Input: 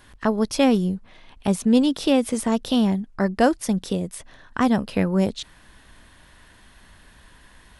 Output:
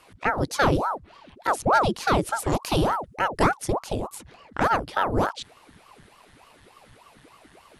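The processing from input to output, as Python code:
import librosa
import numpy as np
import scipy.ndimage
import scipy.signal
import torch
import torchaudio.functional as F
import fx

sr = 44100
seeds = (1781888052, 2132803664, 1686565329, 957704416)

y = fx.high_shelf(x, sr, hz=5700.0, db=9.5, at=(2.49, 3.44))
y = fx.ring_lfo(y, sr, carrier_hz=610.0, swing_pct=90, hz=3.4)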